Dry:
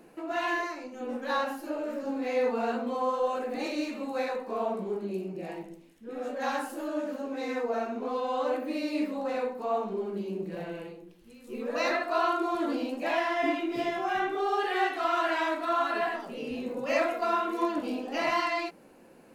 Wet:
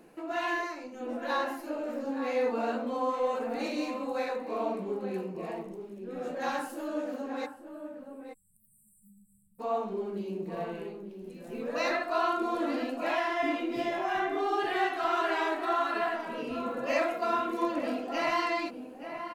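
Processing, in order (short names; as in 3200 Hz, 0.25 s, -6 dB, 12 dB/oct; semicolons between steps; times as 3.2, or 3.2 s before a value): spectral delete 7.46–9.59, 200–7600 Hz; outdoor echo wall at 150 m, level -8 dB; gain -1.5 dB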